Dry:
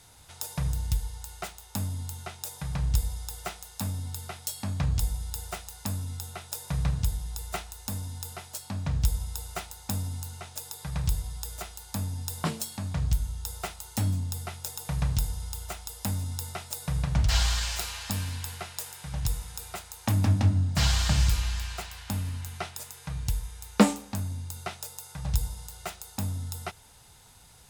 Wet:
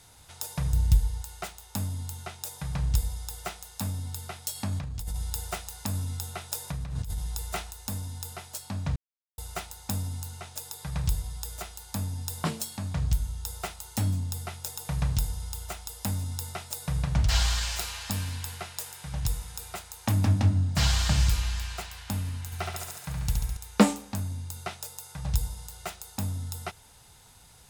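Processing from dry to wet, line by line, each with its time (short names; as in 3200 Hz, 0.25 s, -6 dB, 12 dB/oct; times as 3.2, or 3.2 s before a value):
0.73–1.22 low shelf 340 Hz +7.5 dB
4.55–7.71 negative-ratio compressor -31 dBFS
8.96–9.38 mute
22.45–23.57 flutter echo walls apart 11.9 m, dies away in 1.1 s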